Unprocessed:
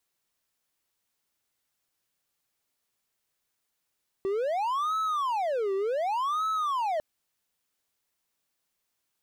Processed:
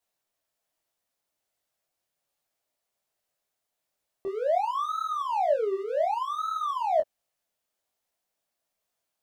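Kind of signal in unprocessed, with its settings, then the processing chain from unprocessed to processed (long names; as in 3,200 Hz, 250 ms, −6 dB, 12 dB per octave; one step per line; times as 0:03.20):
siren wail 386–1,300 Hz 0.67 per second triangle −23.5 dBFS 2.75 s
parametric band 640 Hz +10.5 dB 0.65 octaves
micro pitch shift up and down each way 43 cents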